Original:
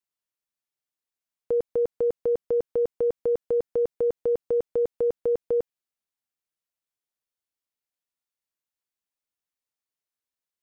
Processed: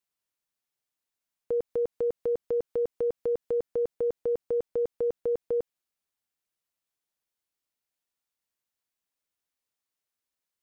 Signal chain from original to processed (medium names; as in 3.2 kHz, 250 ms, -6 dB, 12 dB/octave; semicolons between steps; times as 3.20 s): peak limiter -25 dBFS, peak gain reduction 6 dB; 1.54–3.57 s: tape noise reduction on one side only encoder only; trim +2.5 dB